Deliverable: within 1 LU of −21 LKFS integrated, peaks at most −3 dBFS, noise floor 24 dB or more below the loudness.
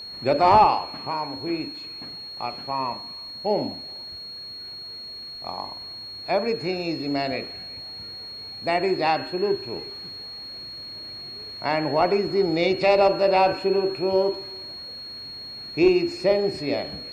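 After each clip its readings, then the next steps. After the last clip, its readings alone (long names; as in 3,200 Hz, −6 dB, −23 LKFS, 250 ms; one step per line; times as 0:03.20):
interfering tone 4,300 Hz; level of the tone −35 dBFS; integrated loudness −25.0 LKFS; sample peak −4.5 dBFS; target loudness −21.0 LKFS
→ notch filter 4,300 Hz, Q 30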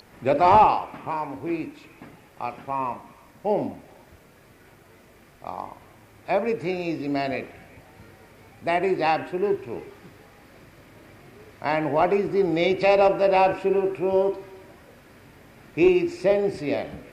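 interfering tone none found; integrated loudness −23.5 LKFS; sample peak −4.5 dBFS; target loudness −21.0 LKFS
→ level +2.5 dB
brickwall limiter −3 dBFS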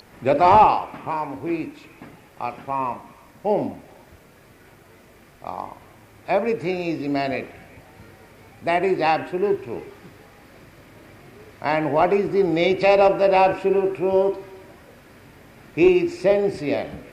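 integrated loudness −21.0 LKFS; sample peak −3.0 dBFS; background noise floor −50 dBFS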